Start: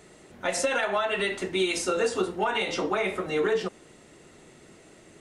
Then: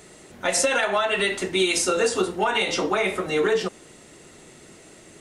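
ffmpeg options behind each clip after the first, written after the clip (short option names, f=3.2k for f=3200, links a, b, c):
-af "highshelf=f=4.1k:g=6.5,volume=3.5dB"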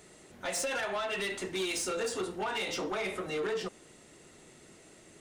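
-af "asoftclip=type=tanh:threshold=-20.5dB,volume=-8dB"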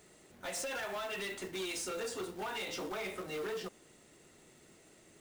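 -af "acrusher=bits=3:mode=log:mix=0:aa=0.000001,volume=-5.5dB"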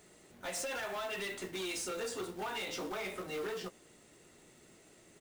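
-filter_complex "[0:a]asplit=2[a][b];[b]adelay=17,volume=-12dB[c];[a][c]amix=inputs=2:normalize=0"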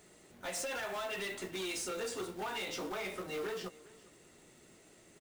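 -af "aecho=1:1:403:0.0891"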